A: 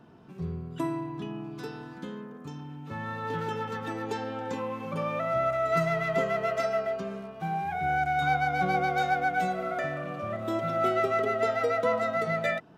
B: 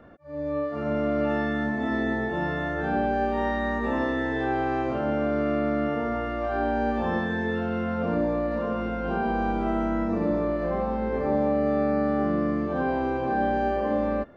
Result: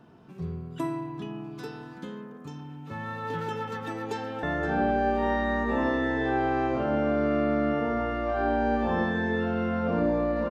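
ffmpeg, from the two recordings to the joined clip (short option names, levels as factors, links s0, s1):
-filter_complex "[0:a]apad=whole_dur=10.5,atrim=end=10.5,atrim=end=4.432[s0];[1:a]atrim=start=2.578:end=8.65[s1];[s0][s1]acrossfade=d=0.004:c1=hsin:c2=hsin,asplit=2[s2][s3];[s3]afade=t=in:st=3.65:d=0.01,afade=t=out:st=4.43:d=0.01,aecho=0:1:520|1040|1560:0.237137|0.0592843|0.0148211[s4];[s2][s4]amix=inputs=2:normalize=0"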